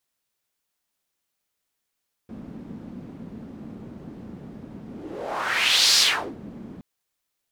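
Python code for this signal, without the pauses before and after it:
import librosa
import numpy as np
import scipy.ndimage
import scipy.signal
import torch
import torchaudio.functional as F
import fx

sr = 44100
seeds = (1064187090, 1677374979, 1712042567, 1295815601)

y = fx.whoosh(sr, seeds[0], length_s=4.52, peak_s=3.69, rise_s=1.17, fall_s=0.41, ends_hz=220.0, peak_hz=4800.0, q=2.7, swell_db=22.0)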